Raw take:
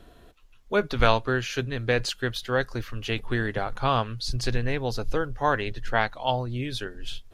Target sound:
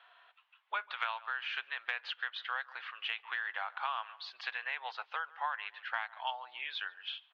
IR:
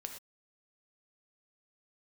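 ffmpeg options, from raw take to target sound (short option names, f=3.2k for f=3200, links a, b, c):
-filter_complex "[0:a]asuperpass=centerf=1700:order=8:qfactor=0.67,asplit=2[a][b];[b]adelay=142,lowpass=f=2.4k:p=1,volume=-22.5dB,asplit=2[c][d];[d]adelay=142,lowpass=f=2.4k:p=1,volume=0.25[e];[a][c][e]amix=inputs=3:normalize=0,acompressor=threshold=-34dB:ratio=6,volume=1dB"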